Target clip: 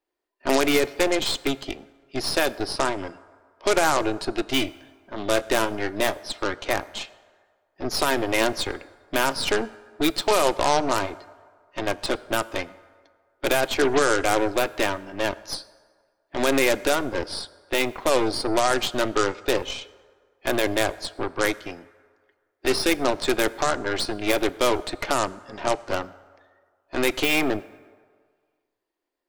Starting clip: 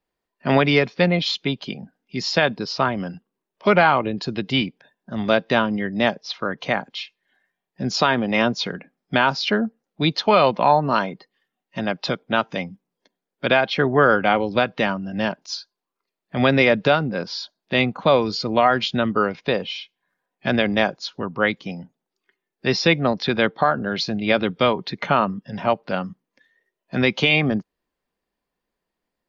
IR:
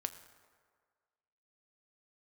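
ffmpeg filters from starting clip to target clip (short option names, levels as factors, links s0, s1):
-filter_complex "[0:a]lowshelf=f=250:t=q:w=3:g=-9,bandreject=f=470:w=12,alimiter=limit=0.376:level=0:latency=1:release=37,aeval=exprs='0.376*(cos(1*acos(clip(val(0)/0.376,-1,1)))-cos(1*PI/2))+0.0668*(cos(4*acos(clip(val(0)/0.376,-1,1)))-cos(4*PI/2))+0.106*(cos(6*acos(clip(val(0)/0.376,-1,1)))-cos(6*PI/2))+0.106*(cos(8*acos(clip(val(0)/0.376,-1,1)))-cos(8*PI/2))':c=same,asettb=1/sr,asplit=3[s0][s1][s2];[s0]atrim=end=4.594[s3];[s1]atrim=start=4.59:end=6.25,asetpts=PTS-STARTPTS,afade=t=in:d=0.004:c=qsin,afade=t=out:st=1.656:d=0.004:c=qsin,asplit=2[s4][s5];[s5]adelay=24,volume=0.211[s6];[s4][s6]amix=inputs=2:normalize=0,atrim=end_sample=73206[s7];[s2]atrim=start=6.246[s8];[s3][s7]acrossfade=d=0.004:c1=hsin:c2=qsin[s9];[s9][s8]acrossfade=d=0.004:c1=qsin:c2=hsin,asplit=2[s10][s11];[1:a]atrim=start_sample=2205[s12];[s11][s12]afir=irnorm=-1:irlink=0,volume=0.891[s13];[s10][s13]amix=inputs=2:normalize=0,volume=0.398"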